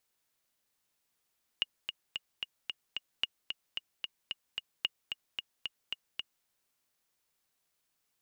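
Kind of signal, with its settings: metronome 223 bpm, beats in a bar 6, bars 3, 2.86 kHz, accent 6.5 dB -15.5 dBFS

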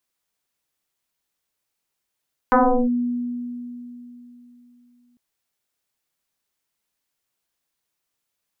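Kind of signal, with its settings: FM tone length 2.65 s, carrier 243 Hz, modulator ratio 1.04, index 4.8, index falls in 0.37 s linear, decay 3.41 s, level -11 dB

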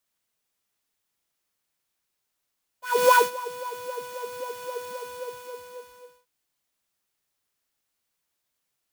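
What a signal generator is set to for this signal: synth patch with filter wobble B5, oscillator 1 triangle, oscillator 2 saw, interval -12 st, sub -2.5 dB, noise -4 dB, filter highpass, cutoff 140 Hz, Q 4.4, filter decay 1.32 s, attack 329 ms, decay 0.16 s, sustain -19 dB, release 1.35 s, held 2.09 s, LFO 3.8 Hz, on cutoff 1.6 oct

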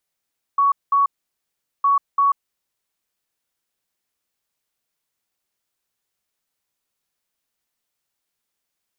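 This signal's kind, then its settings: beep pattern sine 1.12 kHz, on 0.14 s, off 0.20 s, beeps 2, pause 0.78 s, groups 2, -13 dBFS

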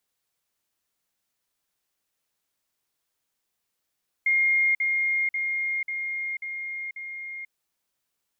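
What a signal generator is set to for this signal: level ladder 2.13 kHz -18.5 dBFS, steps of -3 dB, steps 6, 0.49 s 0.05 s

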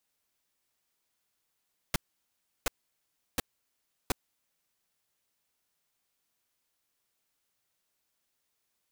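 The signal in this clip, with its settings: noise bursts pink, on 0.02 s, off 0.70 s, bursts 4, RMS -27 dBFS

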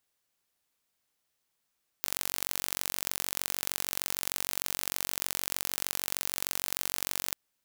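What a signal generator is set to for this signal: pulse train 46.5 per s, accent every 2, -2.5 dBFS 5.30 s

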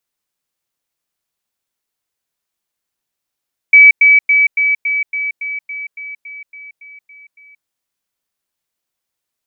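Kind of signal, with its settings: level ladder 2.29 kHz -1.5 dBFS, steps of -3 dB, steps 14, 0.18 s 0.10 s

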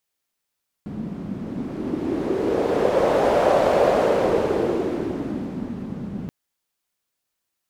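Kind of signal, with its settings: wind-like swept noise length 5.43 s, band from 200 Hz, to 580 Hz, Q 3.2, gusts 1, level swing 14 dB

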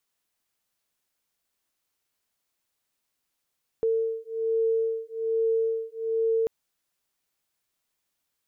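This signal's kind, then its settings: beating tones 450 Hz, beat 1.2 Hz, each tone -26.5 dBFS 2.64 s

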